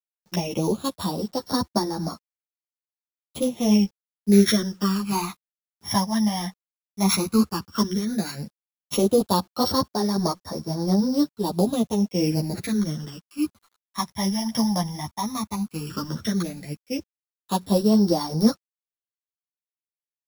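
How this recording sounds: a buzz of ramps at a fixed pitch in blocks of 8 samples; phasing stages 12, 0.12 Hz, lowest notch 440–2700 Hz; a quantiser's noise floor 10-bit, dither none; a shimmering, thickened sound

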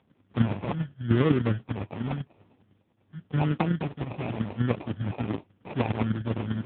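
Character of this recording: chopped level 10 Hz, depth 60%, duty 15%; phasing stages 2, 0.91 Hz, lowest notch 460–1200 Hz; aliases and images of a low sample rate 1600 Hz, jitter 0%; AMR-NB

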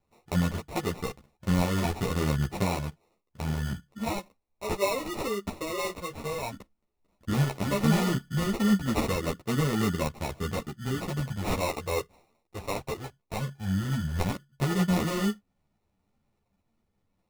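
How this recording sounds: phasing stages 4, 0.14 Hz, lowest notch 180–4500 Hz; aliases and images of a low sample rate 1600 Hz, jitter 0%; a shimmering, thickened sound

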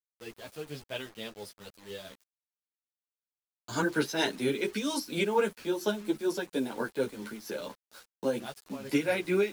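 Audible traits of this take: tremolo triangle 4.3 Hz, depth 70%; a quantiser's noise floor 8-bit, dither none; a shimmering, thickened sound

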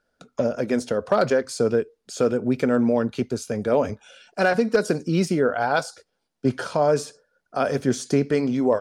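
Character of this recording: noise floor -76 dBFS; spectral tilt -4.0 dB/oct

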